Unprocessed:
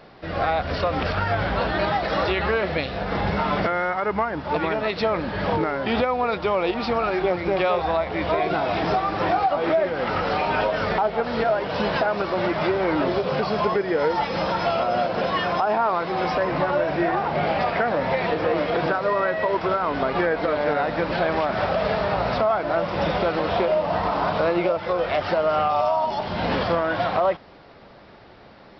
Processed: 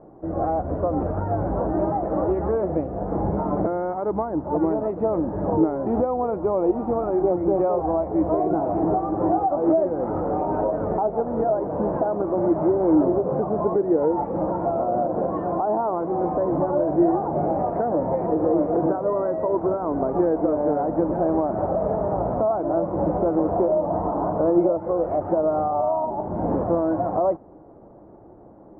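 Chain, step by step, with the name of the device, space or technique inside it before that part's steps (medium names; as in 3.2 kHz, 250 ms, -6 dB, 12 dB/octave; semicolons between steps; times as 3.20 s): under water (low-pass 880 Hz 24 dB/octave; peaking EQ 320 Hz +9.5 dB 0.32 oct)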